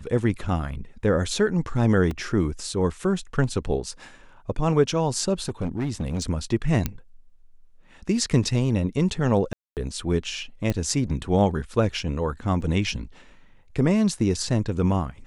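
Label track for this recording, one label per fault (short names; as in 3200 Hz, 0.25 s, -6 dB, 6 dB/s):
2.110000	2.110000	gap 2.8 ms
5.420000	6.230000	clipped -22 dBFS
6.860000	6.860000	pop -10 dBFS
9.530000	9.770000	gap 0.238 s
10.700000	10.700000	pop -12 dBFS
12.610000	12.620000	gap 5.5 ms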